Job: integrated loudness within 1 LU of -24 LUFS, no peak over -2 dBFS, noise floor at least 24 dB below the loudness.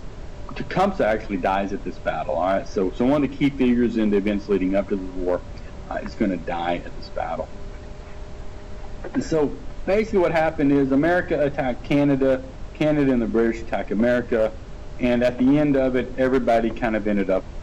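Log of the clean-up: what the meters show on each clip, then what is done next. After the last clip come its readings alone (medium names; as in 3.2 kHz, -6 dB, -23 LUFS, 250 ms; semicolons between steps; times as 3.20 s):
clipped samples 1.0%; clipping level -12.5 dBFS; noise floor -37 dBFS; noise floor target -46 dBFS; loudness -22.0 LUFS; peak level -12.5 dBFS; loudness target -24.0 LUFS
-> clip repair -12.5 dBFS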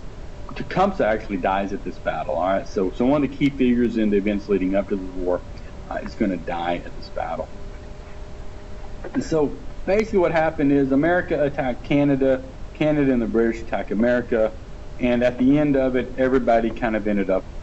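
clipped samples 0.0%; noise floor -37 dBFS; noise floor target -46 dBFS
-> noise print and reduce 9 dB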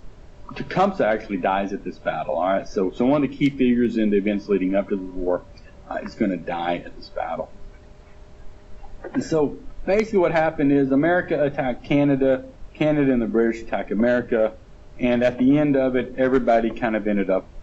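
noise floor -45 dBFS; noise floor target -46 dBFS
-> noise print and reduce 6 dB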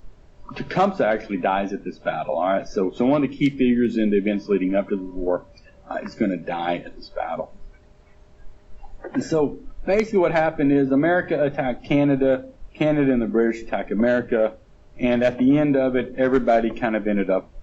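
noise floor -51 dBFS; loudness -22.0 LUFS; peak level -4.0 dBFS; loudness target -24.0 LUFS
-> trim -2 dB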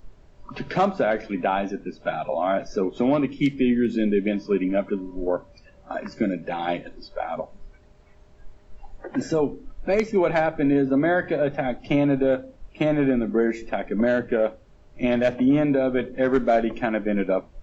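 loudness -24.0 LUFS; peak level -6.0 dBFS; noise floor -53 dBFS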